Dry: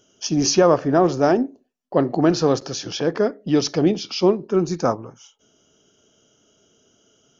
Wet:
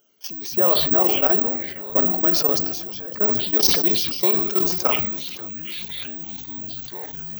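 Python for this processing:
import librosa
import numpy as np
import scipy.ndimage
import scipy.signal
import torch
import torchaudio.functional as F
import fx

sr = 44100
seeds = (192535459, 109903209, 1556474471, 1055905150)

y = fx.law_mismatch(x, sr, coded='mu')
y = fx.dereverb_blind(y, sr, rt60_s=0.66)
y = fx.echo_pitch(y, sr, ms=89, semitones=-6, count=3, db_per_echo=-6.0)
y = fx.high_shelf(y, sr, hz=2900.0, db=fx.steps((0.0, -7.0), (1.02, 2.5), (3.59, 11.5)))
y = fx.echo_feedback(y, sr, ms=563, feedback_pct=33, wet_db=-16.5)
y = fx.level_steps(y, sr, step_db=16)
y = (np.kron(y[::2], np.eye(2)[0]) * 2)[:len(y)]
y = fx.low_shelf(y, sr, hz=380.0, db=-10.5)
y = fx.rev_fdn(y, sr, rt60_s=1.0, lf_ratio=1.0, hf_ratio=0.95, size_ms=23.0, drr_db=16.0)
y = fx.sustainer(y, sr, db_per_s=42.0)
y = y * librosa.db_to_amplitude(-1.5)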